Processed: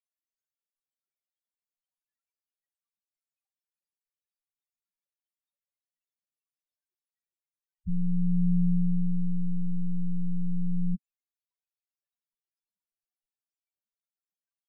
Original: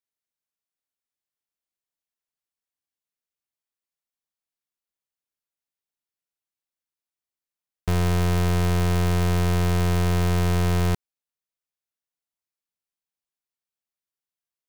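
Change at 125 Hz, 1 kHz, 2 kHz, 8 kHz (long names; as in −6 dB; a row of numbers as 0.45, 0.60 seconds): −8.5 dB, below −40 dB, below −40 dB, below −40 dB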